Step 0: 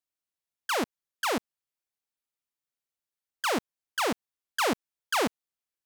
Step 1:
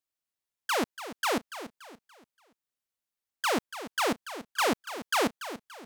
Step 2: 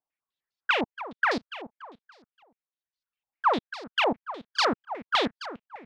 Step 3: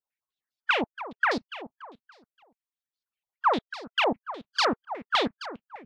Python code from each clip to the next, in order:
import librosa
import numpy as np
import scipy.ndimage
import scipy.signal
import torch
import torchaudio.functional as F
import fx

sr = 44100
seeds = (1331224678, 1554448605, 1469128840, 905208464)

y1 = fx.echo_feedback(x, sr, ms=287, feedback_pct=37, wet_db=-12.5)
y2 = fx.dereverb_blind(y1, sr, rt60_s=0.95)
y2 = fx.filter_held_lowpass(y2, sr, hz=9.9, low_hz=850.0, high_hz=4600.0)
y3 = fx.hpss_only(y2, sr, part='percussive')